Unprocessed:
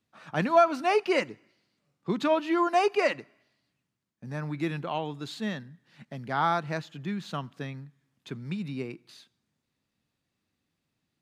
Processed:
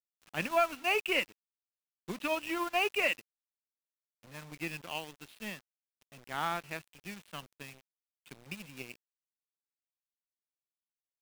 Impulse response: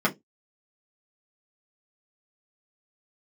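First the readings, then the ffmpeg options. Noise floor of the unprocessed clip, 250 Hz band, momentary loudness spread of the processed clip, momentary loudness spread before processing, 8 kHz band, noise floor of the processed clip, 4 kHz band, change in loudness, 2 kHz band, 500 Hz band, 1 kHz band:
-82 dBFS, -11.5 dB, 19 LU, 17 LU, +1.0 dB, under -85 dBFS, +0.5 dB, -5.0 dB, 0.0 dB, -9.5 dB, -8.5 dB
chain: -af "lowpass=f=2.7k:t=q:w=6.8,acrusher=bits=5:mix=0:aa=0.000001,aeval=exprs='sgn(val(0))*max(abs(val(0))-0.0224,0)':c=same,volume=-8dB"

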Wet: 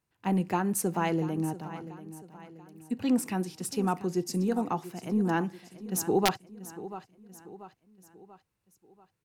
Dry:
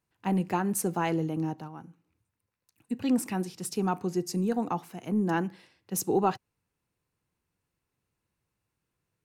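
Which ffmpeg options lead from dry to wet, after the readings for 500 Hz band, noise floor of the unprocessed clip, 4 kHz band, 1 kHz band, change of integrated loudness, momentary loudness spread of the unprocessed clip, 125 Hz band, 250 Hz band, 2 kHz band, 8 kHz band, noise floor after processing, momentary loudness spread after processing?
0.0 dB, -84 dBFS, +4.0 dB, 0.0 dB, -0.5 dB, 9 LU, 0.0 dB, 0.0 dB, +1.5 dB, +0.5 dB, -80 dBFS, 19 LU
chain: -af "aecho=1:1:687|1374|2061|2748:0.178|0.0836|0.0393|0.0185,aeval=exprs='(mod(4.73*val(0)+1,2)-1)/4.73':c=same"

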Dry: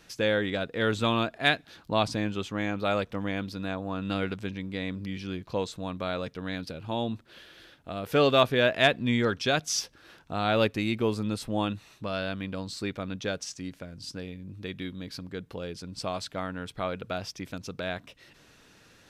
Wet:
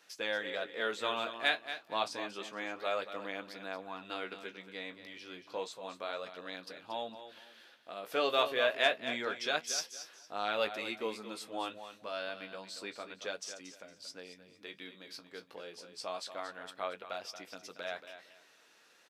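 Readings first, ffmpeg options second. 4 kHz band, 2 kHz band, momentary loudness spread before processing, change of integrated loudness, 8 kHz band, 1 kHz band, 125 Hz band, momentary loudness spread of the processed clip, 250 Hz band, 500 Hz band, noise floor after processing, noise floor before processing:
-5.5 dB, -5.5 dB, 15 LU, -7.5 dB, -5.5 dB, -6.0 dB, -27.0 dB, 17 LU, -17.0 dB, -8.0 dB, -64 dBFS, -58 dBFS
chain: -filter_complex "[0:a]asplit=2[a][b];[b]aecho=0:1:230|460|690:0.282|0.0705|0.0176[c];[a][c]amix=inputs=2:normalize=0,flanger=delay=9.9:depth=8:regen=-38:speed=0.29:shape=sinusoidal,highpass=490,volume=-2dB"

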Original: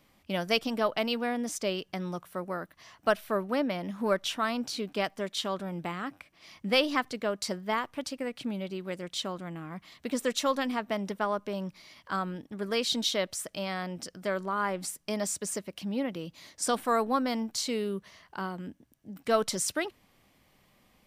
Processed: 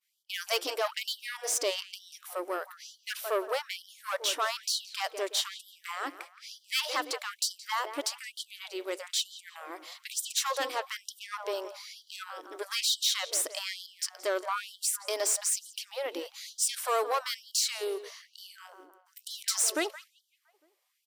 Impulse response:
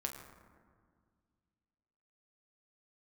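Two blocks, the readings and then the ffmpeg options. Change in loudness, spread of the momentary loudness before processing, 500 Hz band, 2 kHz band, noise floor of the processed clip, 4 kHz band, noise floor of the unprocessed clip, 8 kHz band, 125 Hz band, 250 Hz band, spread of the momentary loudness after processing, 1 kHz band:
0.0 dB, 11 LU, -4.0 dB, -1.0 dB, -70 dBFS, +2.5 dB, -66 dBFS, +6.5 dB, under -40 dB, -14.5 dB, 16 LU, -2.5 dB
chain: -filter_complex "[0:a]bass=f=250:g=-1,treble=f=4k:g=12,asplit=2[a][b];[b]alimiter=limit=-18.5dB:level=0:latency=1,volume=-0.5dB[c];[a][c]amix=inputs=2:normalize=0,agate=range=-33dB:threshold=-44dB:ratio=3:detection=peak,highshelf=f=6.1k:g=-5,asplit=2[d][e];[e]adelay=171,lowpass=f=2.5k:p=1,volume=-14dB,asplit=2[f][g];[g]adelay=171,lowpass=f=2.5k:p=1,volume=0.49,asplit=2[h][i];[i]adelay=171,lowpass=f=2.5k:p=1,volume=0.49,asplit=2[j][k];[k]adelay=171,lowpass=f=2.5k:p=1,volume=0.49,asplit=2[l][m];[m]adelay=171,lowpass=f=2.5k:p=1,volume=0.49[n];[f][h][j][l][n]amix=inputs=5:normalize=0[o];[d][o]amix=inputs=2:normalize=0,aeval=exprs='(tanh(8.91*val(0)+0.3)-tanh(0.3))/8.91':c=same,afftfilt=real='re*gte(b*sr/1024,260*pow(3000/260,0.5+0.5*sin(2*PI*1.1*pts/sr)))':imag='im*gte(b*sr/1024,260*pow(3000/260,0.5+0.5*sin(2*PI*1.1*pts/sr)))':win_size=1024:overlap=0.75,volume=-2dB"

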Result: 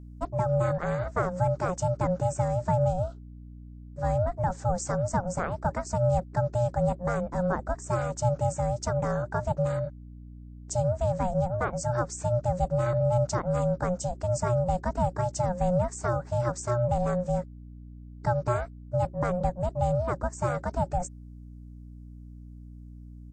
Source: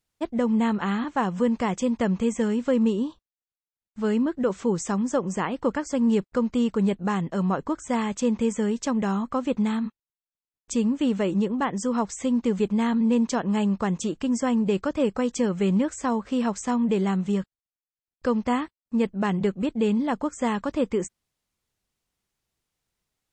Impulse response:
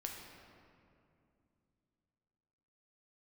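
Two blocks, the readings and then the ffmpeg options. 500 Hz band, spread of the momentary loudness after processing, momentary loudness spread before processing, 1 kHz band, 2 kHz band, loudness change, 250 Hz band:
-0.5 dB, 21 LU, 5 LU, +1.0 dB, -4.0 dB, -3.0 dB, -12.5 dB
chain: -af "firequalizer=gain_entry='entry(1100,0);entry(2700,-16);entry(5200,1)':delay=0.05:min_phase=1,aeval=exprs='val(0)*sin(2*PI*360*n/s)':c=same,aeval=exprs='val(0)+0.00708*(sin(2*PI*60*n/s)+sin(2*PI*2*60*n/s)/2+sin(2*PI*3*60*n/s)/3+sin(2*PI*4*60*n/s)/4+sin(2*PI*5*60*n/s)/5)':c=same"

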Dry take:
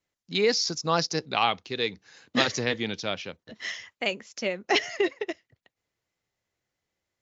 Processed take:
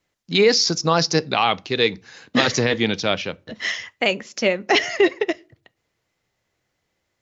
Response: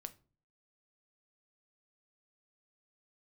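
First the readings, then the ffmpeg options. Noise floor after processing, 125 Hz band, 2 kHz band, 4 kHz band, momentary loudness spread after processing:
-75 dBFS, +9.5 dB, +7.5 dB, +7.0 dB, 10 LU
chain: -filter_complex "[0:a]highshelf=f=6.7k:g=-5.5,alimiter=limit=-15.5dB:level=0:latency=1:release=26,asplit=2[a][b];[1:a]atrim=start_sample=2205[c];[b][c]afir=irnorm=-1:irlink=0,volume=-2.5dB[d];[a][d]amix=inputs=2:normalize=0,volume=7dB"

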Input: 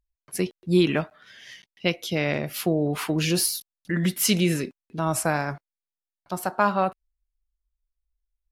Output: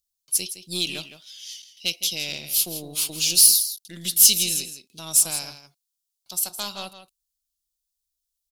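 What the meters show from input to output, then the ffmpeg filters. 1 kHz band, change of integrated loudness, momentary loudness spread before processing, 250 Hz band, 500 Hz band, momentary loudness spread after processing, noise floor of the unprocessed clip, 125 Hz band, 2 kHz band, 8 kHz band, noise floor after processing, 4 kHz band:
-15.0 dB, +5.0 dB, 13 LU, -15.0 dB, -15.0 dB, 23 LU, under -85 dBFS, -15.0 dB, -6.0 dB, +12.0 dB, -82 dBFS, +8.0 dB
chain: -filter_complex "[0:a]aeval=exprs='0.473*(cos(1*acos(clip(val(0)/0.473,-1,1)))-cos(1*PI/2))+0.0376*(cos(6*acos(clip(val(0)/0.473,-1,1)))-cos(6*PI/2))+0.0075*(cos(8*acos(clip(val(0)/0.473,-1,1)))-cos(8*PI/2))':c=same,asplit=2[a][b];[b]adelay=163.3,volume=-11dB,highshelf=f=4k:g=-3.67[c];[a][c]amix=inputs=2:normalize=0,aexciter=amount=11.3:drive=9.6:freq=2.9k,volume=-16dB"

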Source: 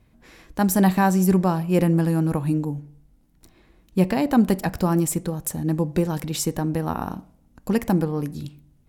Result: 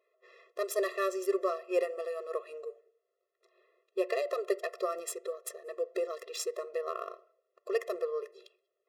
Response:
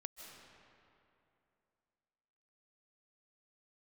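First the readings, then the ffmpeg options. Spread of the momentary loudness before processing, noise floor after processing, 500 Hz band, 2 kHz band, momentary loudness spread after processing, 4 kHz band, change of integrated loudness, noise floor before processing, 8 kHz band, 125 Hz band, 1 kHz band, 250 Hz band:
13 LU, -83 dBFS, -4.5 dB, -9.0 dB, 13 LU, -9.0 dB, -12.5 dB, -59 dBFS, -12.5 dB, under -40 dB, -13.0 dB, -24.5 dB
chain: -filter_complex "[0:a]adynamicsmooth=sensitivity=4.5:basefreq=3k,asplit=2[a][b];[1:a]atrim=start_sample=2205,afade=t=out:st=0.19:d=0.01,atrim=end_sample=8820,asetrate=31311,aresample=44100[c];[b][c]afir=irnorm=-1:irlink=0,volume=-11dB[d];[a][d]amix=inputs=2:normalize=0,afftfilt=real='re*eq(mod(floor(b*sr/1024/350),2),1)':imag='im*eq(mod(floor(b*sr/1024/350),2),1)':win_size=1024:overlap=0.75,volume=-4.5dB"

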